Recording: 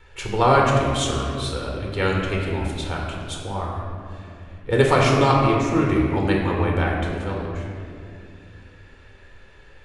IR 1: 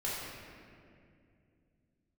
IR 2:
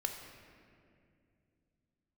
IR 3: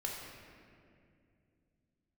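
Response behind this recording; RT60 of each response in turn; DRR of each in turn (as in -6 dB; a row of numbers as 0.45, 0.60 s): 3; 2.4, 2.4, 2.4 s; -8.0, 3.5, -2.0 dB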